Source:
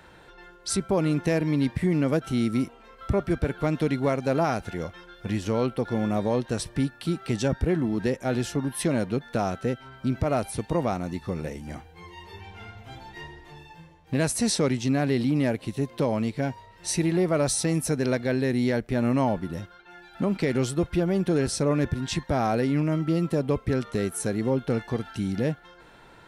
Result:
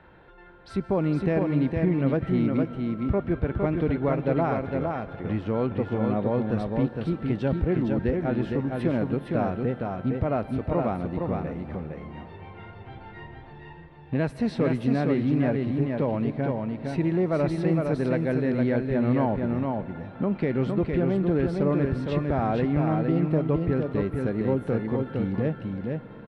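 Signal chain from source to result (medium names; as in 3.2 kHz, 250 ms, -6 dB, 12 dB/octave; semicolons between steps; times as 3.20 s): distance through air 450 m; delay 460 ms -4 dB; reverberation RT60 5.6 s, pre-delay 111 ms, DRR 14.5 dB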